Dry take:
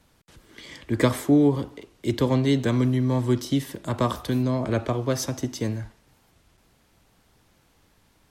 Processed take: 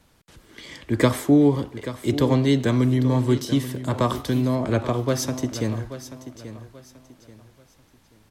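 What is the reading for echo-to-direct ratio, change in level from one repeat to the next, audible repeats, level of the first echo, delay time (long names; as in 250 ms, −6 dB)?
−12.5 dB, −10.0 dB, 3, −13.0 dB, 834 ms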